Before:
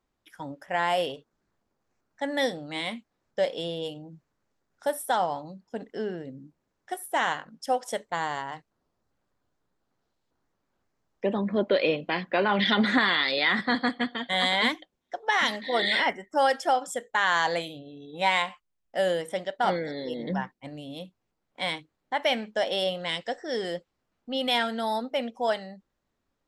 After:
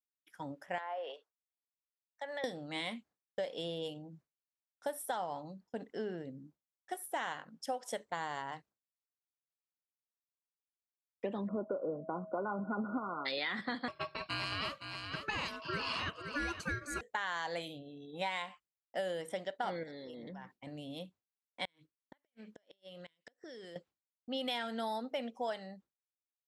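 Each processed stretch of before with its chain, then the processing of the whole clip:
0:00.78–0:02.44: high-pass filter 490 Hz 24 dB per octave + treble cut that deepens with the level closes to 1,400 Hz, closed at −22.5 dBFS + downward compressor 2.5 to 1, threshold −33 dBFS
0:11.47–0:13.25: steady tone 640 Hz −42 dBFS + linear-phase brick-wall low-pass 1,500 Hz
0:13.88–0:17.01: ring modulation 870 Hz + single-tap delay 514 ms −11 dB
0:19.83–0:20.67: transient designer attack −2 dB, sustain +6 dB + downward compressor 12 to 1, threshold −38 dBFS
0:21.65–0:23.76: parametric band 790 Hz −9 dB 0.47 octaves + downward compressor 16 to 1, threshold −40 dBFS + gate with flip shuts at −34 dBFS, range −26 dB
whole clip: high-pass filter 63 Hz; downward expander −50 dBFS; downward compressor, threshold −28 dBFS; level −5.5 dB

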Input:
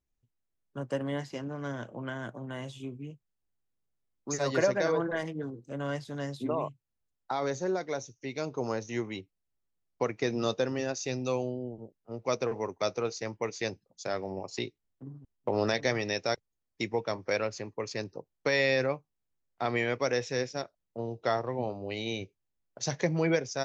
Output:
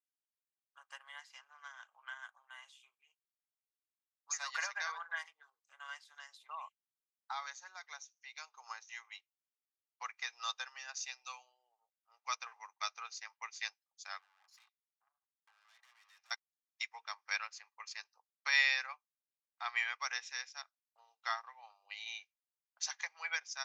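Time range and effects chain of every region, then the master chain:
0:14.19–0:16.31: low-pass filter 3,200 Hz 6 dB per octave + downward compressor, threshold −34 dBFS + tube saturation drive 47 dB, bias 0.55
whole clip: Butterworth high-pass 960 Hz 36 dB per octave; comb filter 2.5 ms, depth 31%; expander for the loud parts 1.5 to 1, over −51 dBFS; level +1 dB

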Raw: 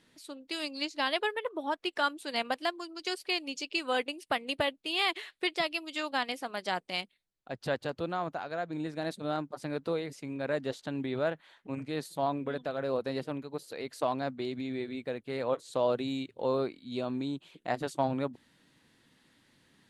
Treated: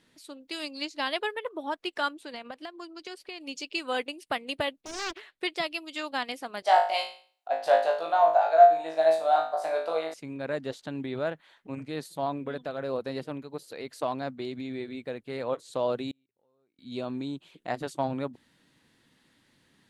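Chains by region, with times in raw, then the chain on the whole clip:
0:02.09–0:03.41: high-shelf EQ 5,100 Hz −9 dB + downward compressor 12 to 1, threshold −35 dBFS
0:04.81–0:05.41: high-shelf EQ 2,100 Hz −9.5 dB + highs frequency-modulated by the lows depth 0.69 ms
0:06.62–0:10.14: high-pass with resonance 690 Hz, resonance Q 6.2 + flutter between parallel walls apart 3.2 metres, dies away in 0.43 s
0:16.11–0:16.79: parametric band 5,500 Hz −12.5 dB 0.6 octaves + downward compressor 3 to 1, threshold −42 dBFS + gate with flip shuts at −46 dBFS, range −30 dB
whole clip: no processing

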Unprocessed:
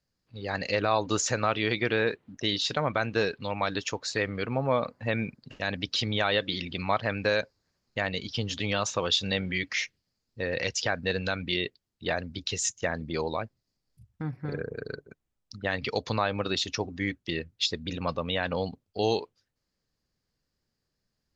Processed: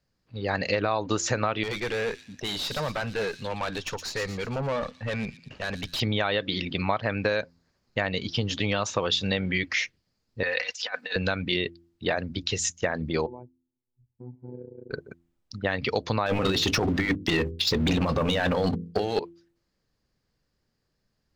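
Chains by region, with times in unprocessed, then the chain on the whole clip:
0:01.63–0:06.00: parametric band 310 Hz −5 dB 0.59 octaves + tube saturation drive 30 dB, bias 0.45 + delay with a high-pass on its return 117 ms, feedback 45%, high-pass 4,600 Hz, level −4 dB
0:10.43–0:11.16: high-pass filter 1,000 Hz + comb filter 4 ms, depth 77% + compressor whose output falls as the input rises −34 dBFS, ratio −0.5
0:13.26–0:14.91: formant resonators in series u + comb filter 2.1 ms, depth 38% + phases set to zero 124 Hz
0:16.26–0:19.19: compressor whose output falls as the input rises −32 dBFS, ratio −0.5 + leveller curve on the samples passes 3 + mains-hum notches 50/100/150/200/250/300/350/400/450/500 Hz
whole clip: high-shelf EQ 4,500 Hz −7 dB; hum removal 84.99 Hz, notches 4; downward compressor, threshold −27 dBFS; level +6 dB

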